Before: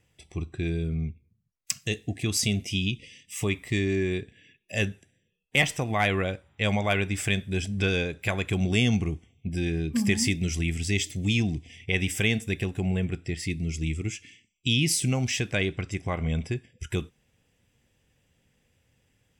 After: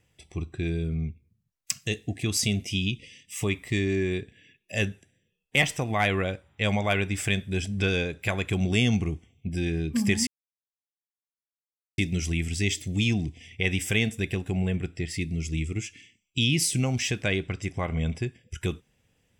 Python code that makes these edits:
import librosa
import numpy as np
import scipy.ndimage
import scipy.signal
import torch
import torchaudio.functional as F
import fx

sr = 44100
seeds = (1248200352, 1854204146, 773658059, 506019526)

y = fx.edit(x, sr, fx.insert_silence(at_s=10.27, length_s=1.71), tone=tone)